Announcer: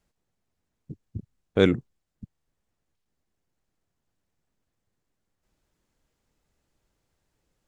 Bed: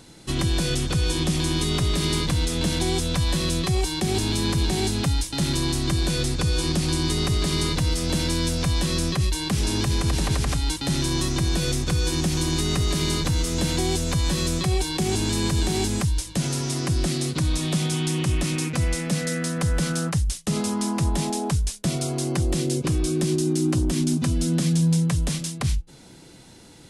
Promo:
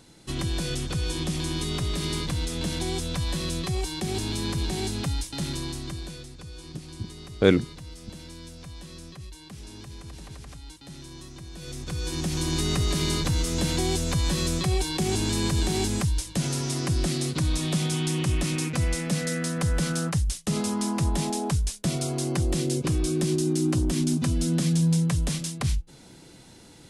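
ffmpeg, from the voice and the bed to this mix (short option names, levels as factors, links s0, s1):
-filter_complex "[0:a]adelay=5850,volume=1.12[s0];[1:a]volume=3.76,afade=t=out:st=5.28:d=0.99:silence=0.211349,afade=t=in:st=11.54:d=1.1:silence=0.141254[s1];[s0][s1]amix=inputs=2:normalize=0"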